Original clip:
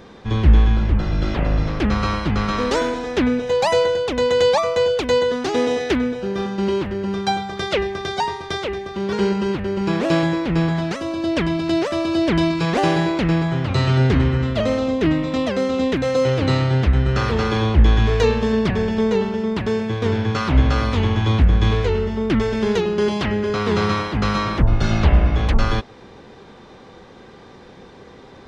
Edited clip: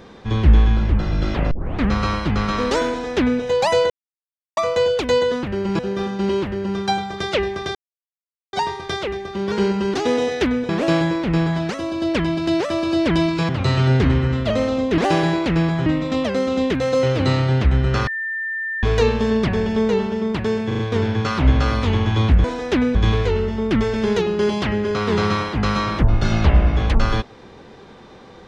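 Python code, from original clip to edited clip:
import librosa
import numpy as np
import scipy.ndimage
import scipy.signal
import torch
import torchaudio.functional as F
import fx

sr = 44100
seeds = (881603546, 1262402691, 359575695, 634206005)

y = fx.edit(x, sr, fx.tape_start(start_s=1.51, length_s=0.38),
    fx.duplicate(start_s=2.89, length_s=0.51, to_s=21.54),
    fx.silence(start_s=3.9, length_s=0.67),
    fx.swap(start_s=5.43, length_s=0.75, other_s=9.55, other_length_s=0.36),
    fx.insert_silence(at_s=8.14, length_s=0.78),
    fx.move(start_s=12.71, length_s=0.88, to_s=15.08),
    fx.bleep(start_s=17.29, length_s=0.76, hz=1790.0, db=-22.5),
    fx.stutter(start_s=19.89, slice_s=0.04, count=4), tone=tone)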